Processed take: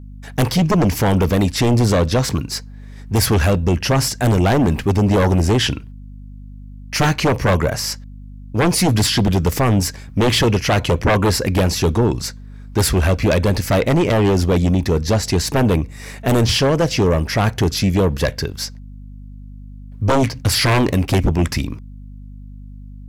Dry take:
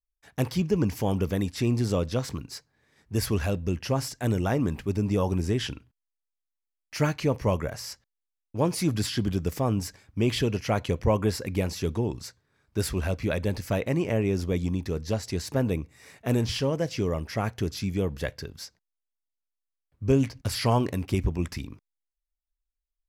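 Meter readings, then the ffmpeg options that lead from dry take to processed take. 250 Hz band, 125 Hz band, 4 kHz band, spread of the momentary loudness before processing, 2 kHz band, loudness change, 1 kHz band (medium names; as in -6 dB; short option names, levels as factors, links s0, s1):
+10.0 dB, +11.0 dB, +14.0 dB, 11 LU, +13.5 dB, +10.5 dB, +12.5 dB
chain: -af "aeval=exprs='val(0)+0.00355*(sin(2*PI*50*n/s)+sin(2*PI*2*50*n/s)/2+sin(2*PI*3*50*n/s)/3+sin(2*PI*4*50*n/s)/4+sin(2*PI*5*50*n/s)/5)':c=same,aeval=exprs='0.299*sin(PI/2*3.55*val(0)/0.299)':c=same"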